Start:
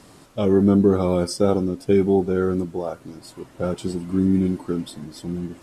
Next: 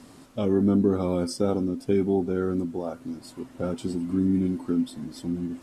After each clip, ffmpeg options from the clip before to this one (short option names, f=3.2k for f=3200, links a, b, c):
-filter_complex "[0:a]equalizer=f=250:t=o:w=0.21:g=13,asplit=2[a][b];[b]acompressor=threshold=-26dB:ratio=6,volume=-2.5dB[c];[a][c]amix=inputs=2:normalize=0,volume=-8dB"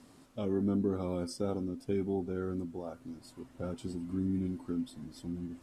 -af "asubboost=boost=2:cutoff=140,volume=-9dB"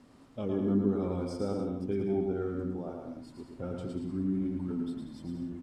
-filter_complex "[0:a]lowpass=f=3k:p=1,asplit=2[a][b];[b]aecho=0:1:110|187|240.9|278.6|305:0.631|0.398|0.251|0.158|0.1[c];[a][c]amix=inputs=2:normalize=0"